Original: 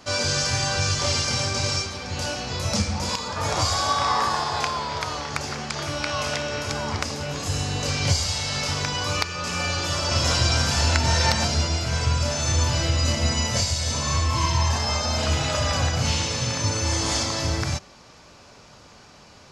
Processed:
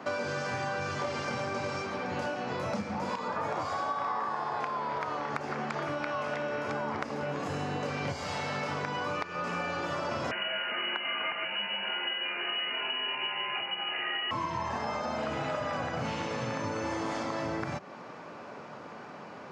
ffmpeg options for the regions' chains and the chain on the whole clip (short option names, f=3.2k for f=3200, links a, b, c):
-filter_complex "[0:a]asettb=1/sr,asplit=3[a][b][c];[a]atrim=end=10.314[d];[b]atrim=start=10.31:end=14.31,asetpts=PTS-STARTPTS,afade=t=in:d=0.004:c=qsin,afade=t=out:st=3.996:d=0.004:c=qsin,lowpass=f=2.6k:t=q:w=0.5098,lowpass=f=2.6k:t=q:w=0.6013,lowpass=f=2.6k:t=q:w=0.9,lowpass=f=2.6k:t=q:w=2.563,afreqshift=-3000,volume=10dB,asoftclip=hard,volume=-10dB[e];[c]atrim=start=14.306[f];[d][e]acrossfade=d=0.004:c1=hsin:c2=qsin[g];[g][f]acrossfade=d=0.004:c1=qsin:c2=hsin,highpass=83,acrossover=split=150 2200:gain=0.0631 1 0.0891[h][i][j];[h][i][j]amix=inputs=3:normalize=0,acompressor=threshold=-38dB:ratio=6,volume=7dB"